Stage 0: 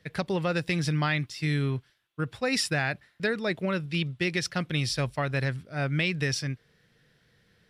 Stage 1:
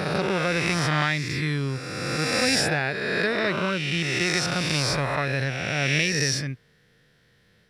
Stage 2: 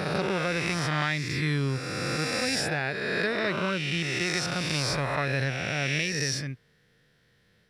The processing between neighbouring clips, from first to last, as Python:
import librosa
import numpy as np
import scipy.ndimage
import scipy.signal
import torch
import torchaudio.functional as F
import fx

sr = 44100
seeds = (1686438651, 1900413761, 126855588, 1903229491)

y1 = fx.spec_swells(x, sr, rise_s=2.17)
y2 = fx.rider(y1, sr, range_db=4, speed_s=0.5)
y2 = y2 * 10.0 ** (-3.5 / 20.0)